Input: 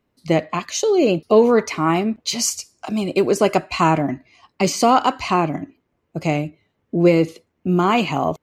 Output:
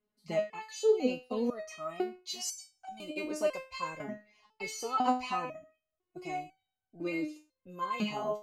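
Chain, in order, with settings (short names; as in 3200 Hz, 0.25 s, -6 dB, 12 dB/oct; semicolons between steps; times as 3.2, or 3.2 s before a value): stepped resonator 2 Hz 210–760 Hz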